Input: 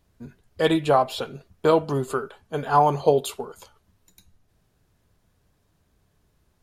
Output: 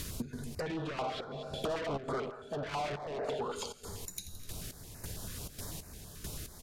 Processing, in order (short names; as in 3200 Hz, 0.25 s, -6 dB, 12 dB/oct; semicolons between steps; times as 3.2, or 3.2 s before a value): high shelf 2900 Hz +11.5 dB; feedback echo 84 ms, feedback 52%, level -17 dB; reverb RT60 0.95 s, pre-delay 53 ms, DRR 14 dB; limiter -14 dBFS, peak gain reduction 10.5 dB; sine folder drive 7 dB, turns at -14 dBFS; dynamic EQ 1100 Hz, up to +6 dB, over -35 dBFS, Q 1.1; treble ducked by the level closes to 1800 Hz, closed at -15.5 dBFS; 1.32–3.38 small resonant body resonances 630/3400 Hz, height 12 dB, ringing for 25 ms; soft clip -19 dBFS, distortion -6 dB; step gate "xx.xx....xx...xx" 137 bpm -12 dB; compressor 5:1, threshold -55 dBFS, peak gain reduction 28.5 dB; stepped notch 9.1 Hz 770–3300 Hz; gain +16.5 dB